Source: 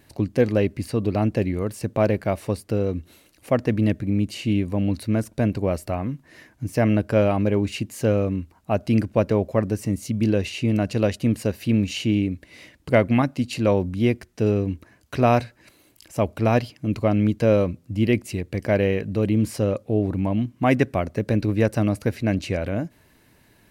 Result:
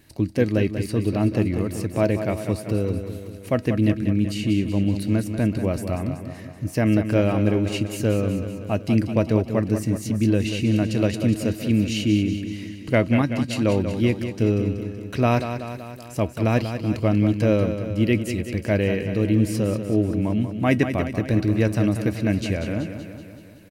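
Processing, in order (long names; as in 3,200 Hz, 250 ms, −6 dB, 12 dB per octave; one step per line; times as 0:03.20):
parametric band 770 Hz −5.5 dB 1.7 octaves
tuned comb filter 320 Hz, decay 0.15 s, harmonics all, mix 50%
on a send: repeating echo 189 ms, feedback 60%, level −9 dB
on the sum: level +6 dB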